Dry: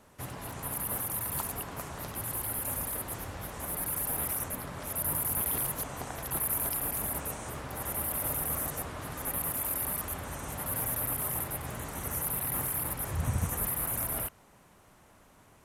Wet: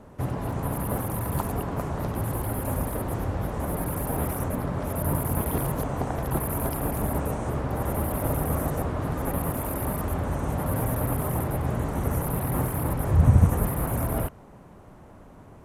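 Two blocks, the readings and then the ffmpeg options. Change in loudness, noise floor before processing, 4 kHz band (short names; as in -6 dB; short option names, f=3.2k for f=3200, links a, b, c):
+4.5 dB, -59 dBFS, -2.0 dB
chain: -af "tiltshelf=f=1.4k:g=9.5,volume=4.5dB"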